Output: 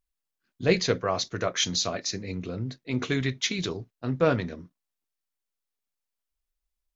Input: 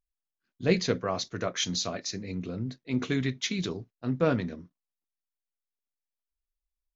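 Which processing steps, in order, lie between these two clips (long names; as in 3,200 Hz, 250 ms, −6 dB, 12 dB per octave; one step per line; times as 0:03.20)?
dynamic equaliser 220 Hz, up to −6 dB, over −41 dBFS, Q 1.4
level +4 dB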